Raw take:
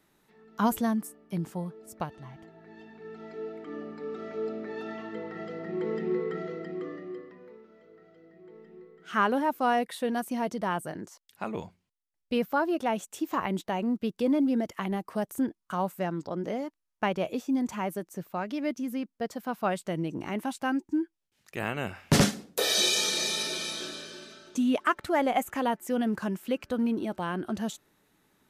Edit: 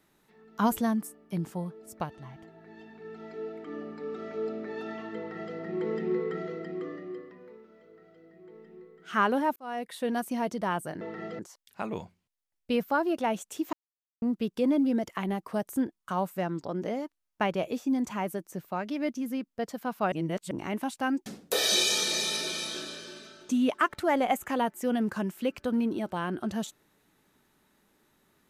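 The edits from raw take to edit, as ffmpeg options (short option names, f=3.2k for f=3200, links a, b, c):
-filter_complex "[0:a]asplit=9[a][b][c][d][e][f][g][h][i];[a]atrim=end=9.56,asetpts=PTS-STARTPTS,afade=t=out:st=9.556:d=0.004:c=hsin[j];[b]atrim=start=9.56:end=11.012,asetpts=PTS-STARTPTS,afade=t=in:d=0.54[k];[c]atrim=start=5.178:end=5.562[l];[d]atrim=start=11.008:end=13.35,asetpts=PTS-STARTPTS,afade=t=out:st=2.338:d=0.004:c=hsin[m];[e]atrim=start=13.35:end=13.84,asetpts=PTS-STARTPTS,volume=0[n];[f]atrim=start=13.84:end=19.742,asetpts=PTS-STARTPTS,afade=t=in:d=0.004:c=hsin[o];[g]atrim=start=19.738:end=20.132,asetpts=PTS-STARTPTS,areverse[p];[h]atrim=start=20.128:end=20.882[q];[i]atrim=start=22.318[r];[j][k]concat=n=2:v=0:a=1[s];[s][l]acrossfade=d=0.004:c1=hsin:c2=hsin[t];[m][n][o]concat=n=3:v=0:a=1[u];[t][u]acrossfade=d=0.004:c1=hsin:c2=hsin[v];[v][p]acrossfade=d=0.004:c1=hsin:c2=hsin[w];[w][q]acrossfade=d=0.004:c1=hsin:c2=hsin[x];[x][r]acrossfade=d=0.004:c1=hsin:c2=hsin"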